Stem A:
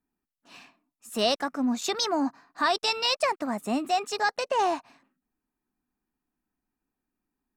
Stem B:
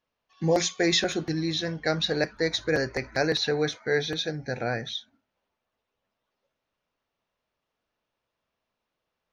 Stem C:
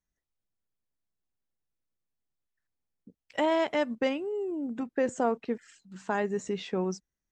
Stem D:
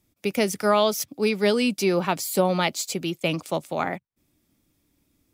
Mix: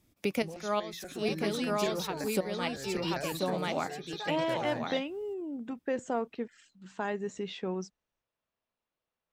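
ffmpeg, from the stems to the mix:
ffmpeg -i stem1.wav -i stem2.wav -i stem3.wav -i stem4.wav -filter_complex "[0:a]acompressor=threshold=-32dB:ratio=2.5,volume=-7.5dB[link_01];[1:a]acrossover=split=130[link_02][link_03];[link_03]acompressor=threshold=-29dB:ratio=6[link_04];[link_02][link_04]amix=inputs=2:normalize=0,volume=-7.5dB,asplit=2[link_05][link_06];[2:a]acontrast=51,equalizer=frequency=3400:width=1.5:gain=5,adelay=900,volume=-10.5dB[link_07];[3:a]volume=1dB,asplit=2[link_08][link_09];[link_09]volume=-12.5dB[link_10];[link_06]apad=whole_len=235279[link_11];[link_08][link_11]sidechaincompress=threshold=-52dB:ratio=12:attack=24:release=148[link_12];[link_10]aecho=0:1:1035:1[link_13];[link_01][link_05][link_07][link_12][link_13]amix=inputs=5:normalize=0,highshelf=frequency=7200:gain=-4.5,alimiter=limit=-19dB:level=0:latency=1:release=497" out.wav

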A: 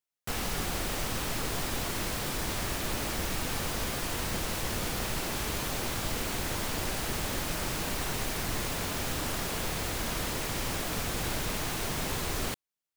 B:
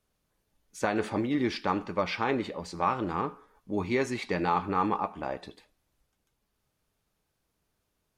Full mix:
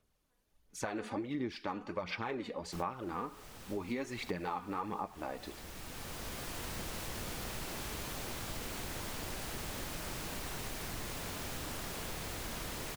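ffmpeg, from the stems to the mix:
ffmpeg -i stem1.wav -i stem2.wav -filter_complex "[0:a]adelay=2450,volume=-7.5dB[link_01];[1:a]aphaser=in_gain=1:out_gain=1:delay=4.2:decay=0.49:speed=1.4:type=sinusoidal,volume=-2.5dB,asplit=2[link_02][link_03];[link_03]apad=whole_len=679722[link_04];[link_01][link_04]sidechaincompress=threshold=-36dB:ratio=8:attack=16:release=1500[link_05];[link_05][link_02]amix=inputs=2:normalize=0,acompressor=threshold=-36dB:ratio=4" out.wav

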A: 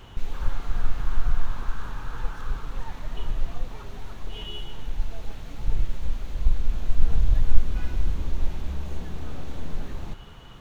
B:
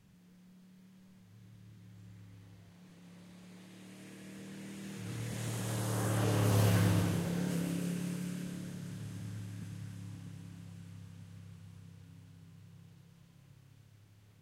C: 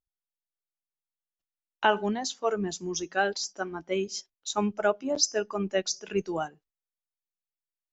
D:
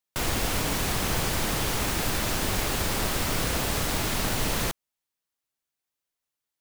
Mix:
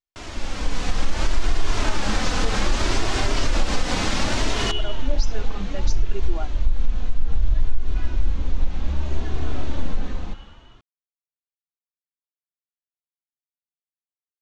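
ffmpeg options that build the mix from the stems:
ffmpeg -i stem1.wav -i stem2.wav -i stem3.wav -i stem4.wav -filter_complex "[0:a]adelay=200,volume=-1.5dB[link_01];[2:a]volume=-6dB[link_02];[3:a]volume=-5dB[link_03];[link_01][link_03]amix=inputs=2:normalize=0,dynaudnorm=framelen=330:gausssize=7:maxgain=12dB,alimiter=limit=-12dB:level=0:latency=1:release=116,volume=0dB[link_04];[link_02]alimiter=level_in=2.5dB:limit=-24dB:level=0:latency=1,volume=-2.5dB,volume=0dB[link_05];[link_04][link_05]amix=inputs=2:normalize=0,lowpass=frequency=6900:width=0.5412,lowpass=frequency=6900:width=1.3066,dynaudnorm=framelen=120:gausssize=9:maxgain=5.5dB,flanger=delay=2.8:depth=1.2:regen=-27:speed=0.64:shape=sinusoidal" out.wav

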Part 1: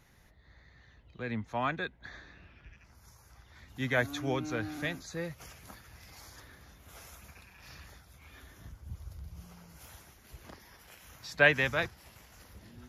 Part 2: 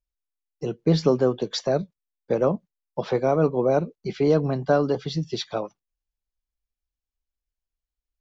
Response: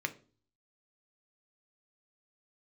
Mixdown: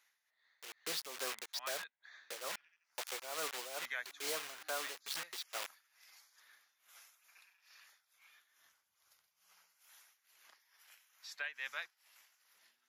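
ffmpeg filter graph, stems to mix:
-filter_complex "[0:a]volume=-5.5dB[link_01];[1:a]acrusher=bits=4:mix=0:aa=0.000001,volume=-3dB[link_02];[link_01][link_02]amix=inputs=2:normalize=0,highpass=1400,tremolo=f=2.3:d=0.73,alimiter=level_in=3.5dB:limit=-24dB:level=0:latency=1:release=395,volume=-3.5dB"

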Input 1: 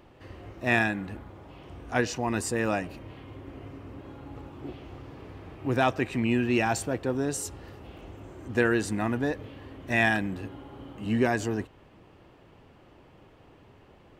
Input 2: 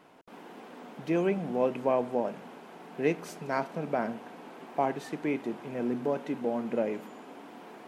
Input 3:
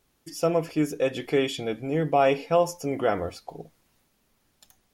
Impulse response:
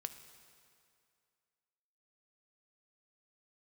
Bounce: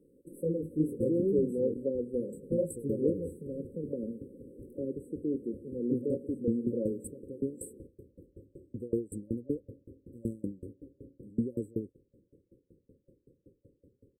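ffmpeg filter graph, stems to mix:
-filter_complex "[0:a]aeval=exprs='val(0)*pow(10,-32*if(lt(mod(5.3*n/s,1),2*abs(5.3)/1000),1-mod(5.3*n/s,1)/(2*abs(5.3)/1000),(mod(5.3*n/s,1)-2*abs(5.3)/1000)/(1-2*abs(5.3)/1000))/20)':channel_layout=same,adelay=250,volume=-2.5dB[link_01];[1:a]highshelf=frequency=9600:gain=-8,volume=-6dB[link_02];[2:a]lowshelf=frequency=300:gain=9.5,flanger=delay=16.5:depth=7.6:speed=2.2,volume=-11dB,asplit=3[link_03][link_04][link_05];[link_03]atrim=end=1.74,asetpts=PTS-STARTPTS,afade=type=out:start_time=1.736:duration=0.004:curve=hsin[link_06];[link_04]atrim=start=1.74:end=2.43,asetpts=PTS-STARTPTS,volume=0[link_07];[link_05]atrim=start=2.43,asetpts=PTS-STARTPTS,afade=type=in:duration=0.004:curve=hsin[link_08];[link_06][link_07][link_08]concat=n=3:v=0:a=1[link_09];[link_01][link_02][link_09]amix=inputs=3:normalize=0,afftfilt=real='re*(1-between(b*sr/4096,560,7700))':imag='im*(1-between(b*sr/4096,560,7700))':win_size=4096:overlap=0.75,equalizer=frequency=340:width_type=o:width=2.6:gain=4.5"

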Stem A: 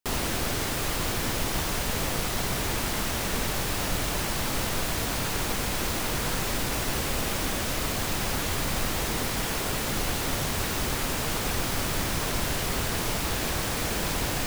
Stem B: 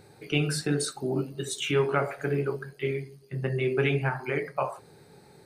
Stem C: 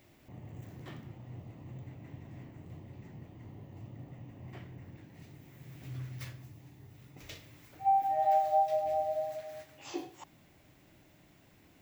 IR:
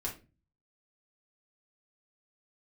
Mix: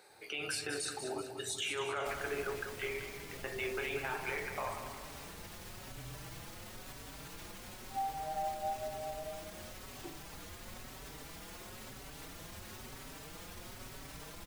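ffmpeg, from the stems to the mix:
-filter_complex "[0:a]alimiter=limit=-21.5dB:level=0:latency=1:release=42,asplit=2[link_01][link_02];[link_02]adelay=4.8,afreqshift=1[link_03];[link_01][link_03]amix=inputs=2:normalize=1,adelay=2000,volume=-14.5dB[link_04];[1:a]highpass=660,alimiter=level_in=3dB:limit=-24dB:level=0:latency=1:release=80,volume=-3dB,volume=-1dB,asplit=2[link_05][link_06];[link_06]volume=-8dB[link_07];[2:a]adelay=100,volume=-10.5dB[link_08];[link_07]aecho=0:1:191|382|573|764|955|1146|1337:1|0.47|0.221|0.104|0.0488|0.0229|0.0108[link_09];[link_04][link_05][link_08][link_09]amix=inputs=4:normalize=0"

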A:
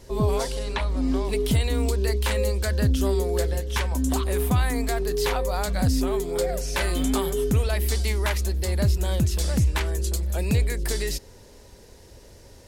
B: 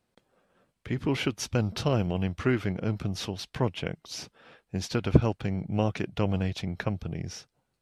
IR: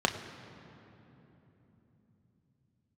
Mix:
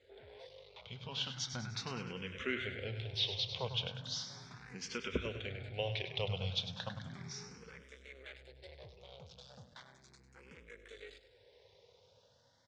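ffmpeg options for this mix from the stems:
-filter_complex "[0:a]aeval=exprs='(tanh(31.6*val(0)+0.55)-tanh(0.55))/31.6':channel_layout=same,alimiter=level_in=8.5dB:limit=-24dB:level=0:latency=1:release=473,volume=-8.5dB,volume=-14.5dB,asplit=2[link_01][link_02];[link_02]volume=-13.5dB[link_03];[1:a]equalizer=frequency=490:width=0.33:gain=-14.5,volume=-5dB,asplit=4[link_04][link_05][link_06][link_07];[link_05]volume=-16dB[link_08];[link_06]volume=-8dB[link_09];[link_07]apad=whole_len=558967[link_10];[link_01][link_10]sidechaincompress=threshold=-47dB:ratio=8:attack=16:release=251[link_11];[2:a]atrim=start_sample=2205[link_12];[link_08][link_12]afir=irnorm=-1:irlink=0[link_13];[link_03][link_09]amix=inputs=2:normalize=0,aecho=0:1:100|200|300|400|500|600|700:1|0.51|0.26|0.133|0.0677|0.0345|0.0176[link_14];[link_11][link_04][link_13][link_14]amix=inputs=4:normalize=0,dynaudnorm=framelen=170:gausssize=17:maxgain=4dB,highpass=120,equalizer=frequency=200:width_type=q:width=4:gain=-8,equalizer=frequency=310:width_type=q:width=4:gain=-10,equalizer=frequency=490:width_type=q:width=4:gain=8,equalizer=frequency=1500:width_type=q:width=4:gain=5,equalizer=frequency=2200:width_type=q:width=4:gain=7,equalizer=frequency=3500:width_type=q:width=4:gain=9,lowpass=frequency=5800:width=0.5412,lowpass=frequency=5800:width=1.3066,asplit=2[link_15][link_16];[link_16]afreqshift=0.36[link_17];[link_15][link_17]amix=inputs=2:normalize=1"

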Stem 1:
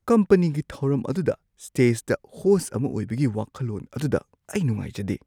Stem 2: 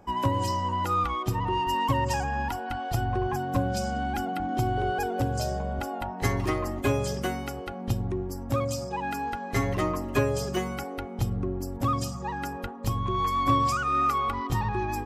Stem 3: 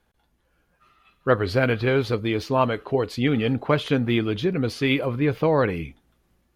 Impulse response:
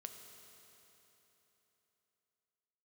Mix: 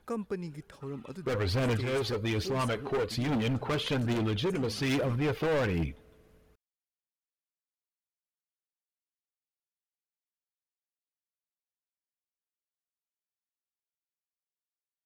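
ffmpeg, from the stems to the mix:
-filter_complex "[0:a]lowshelf=frequency=470:gain=-5.5,volume=-13dB,asplit=2[link_01][link_02];[link_02]volume=-22.5dB[link_03];[2:a]asoftclip=type=tanh:threshold=-16.5dB,aphaser=in_gain=1:out_gain=1:delay=2.8:decay=0.49:speed=1.2:type=triangular,asoftclip=type=hard:threshold=-23dB,volume=-1.5dB,asplit=2[link_04][link_05];[link_05]volume=-19.5dB[link_06];[3:a]atrim=start_sample=2205[link_07];[link_03][link_06]amix=inputs=2:normalize=0[link_08];[link_08][link_07]afir=irnorm=-1:irlink=0[link_09];[link_01][link_04][link_09]amix=inputs=3:normalize=0,alimiter=level_in=1dB:limit=-24dB:level=0:latency=1:release=115,volume=-1dB"

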